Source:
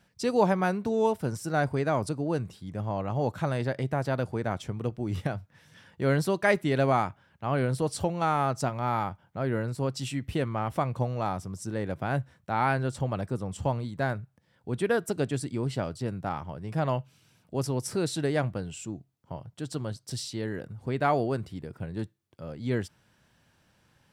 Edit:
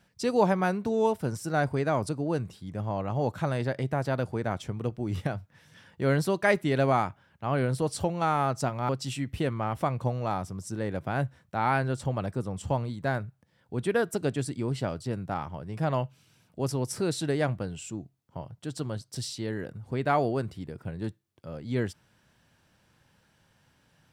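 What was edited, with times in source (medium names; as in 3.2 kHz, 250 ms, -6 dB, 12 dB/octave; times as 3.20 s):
8.89–9.84 s: delete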